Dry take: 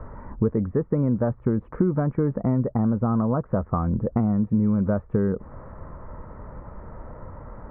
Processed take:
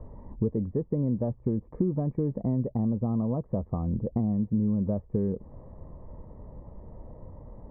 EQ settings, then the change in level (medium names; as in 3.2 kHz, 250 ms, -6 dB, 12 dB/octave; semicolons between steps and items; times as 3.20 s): boxcar filter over 31 samples; -4.5 dB